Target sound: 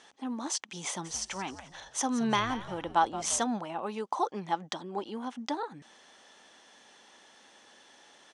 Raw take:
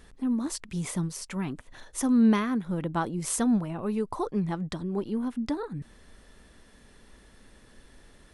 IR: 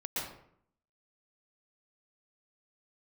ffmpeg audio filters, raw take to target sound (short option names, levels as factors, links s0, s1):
-filter_complex "[0:a]highpass=420,equalizer=f=430:t=q:w=4:g=-4,equalizer=f=820:t=q:w=4:g=8,equalizer=f=3200:t=q:w=4:g=7,equalizer=f=6100:t=q:w=4:g=8,lowpass=f=8300:w=0.5412,lowpass=f=8300:w=1.3066,asplit=3[s0][s1][s2];[s0]afade=t=out:st=1.04:d=0.02[s3];[s1]asplit=5[s4][s5][s6][s7][s8];[s5]adelay=173,afreqshift=-110,volume=0.211[s9];[s6]adelay=346,afreqshift=-220,volume=0.0822[s10];[s7]adelay=519,afreqshift=-330,volume=0.032[s11];[s8]adelay=692,afreqshift=-440,volume=0.0126[s12];[s4][s9][s10][s11][s12]amix=inputs=5:normalize=0,afade=t=in:st=1.04:d=0.02,afade=t=out:st=3.42:d=0.02[s13];[s2]afade=t=in:st=3.42:d=0.02[s14];[s3][s13][s14]amix=inputs=3:normalize=0,volume=1.12"